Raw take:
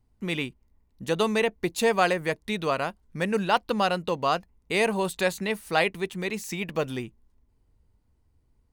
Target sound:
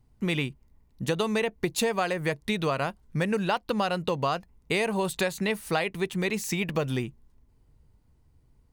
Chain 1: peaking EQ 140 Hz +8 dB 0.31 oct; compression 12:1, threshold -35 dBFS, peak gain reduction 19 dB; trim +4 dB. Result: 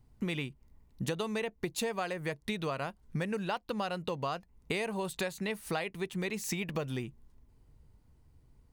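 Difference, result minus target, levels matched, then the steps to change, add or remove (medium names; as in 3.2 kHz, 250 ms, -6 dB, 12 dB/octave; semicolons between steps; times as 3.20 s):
compression: peak gain reduction +8 dB
change: compression 12:1, threshold -26.5 dBFS, peak gain reduction 11 dB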